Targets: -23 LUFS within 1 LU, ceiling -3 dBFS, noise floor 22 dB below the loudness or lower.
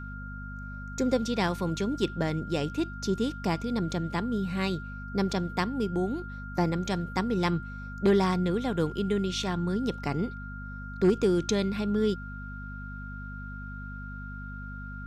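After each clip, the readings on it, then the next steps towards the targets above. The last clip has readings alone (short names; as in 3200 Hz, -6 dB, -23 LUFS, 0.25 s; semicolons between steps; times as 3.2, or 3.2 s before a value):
hum 50 Hz; harmonics up to 250 Hz; hum level -38 dBFS; steady tone 1400 Hz; tone level -42 dBFS; loudness -29.0 LUFS; peak -12.0 dBFS; loudness target -23.0 LUFS
-> de-hum 50 Hz, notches 5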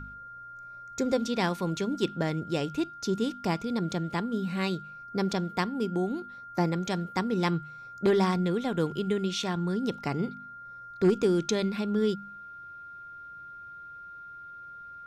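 hum none; steady tone 1400 Hz; tone level -42 dBFS
-> notch 1400 Hz, Q 30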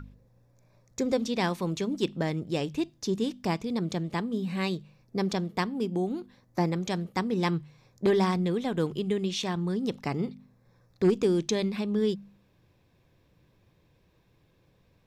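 steady tone none; loudness -29.5 LUFS; peak -12.5 dBFS; loudness target -23.0 LUFS
-> gain +6.5 dB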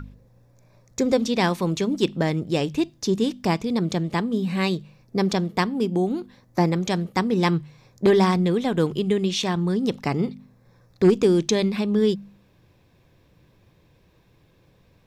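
loudness -23.0 LUFS; peak -6.0 dBFS; noise floor -59 dBFS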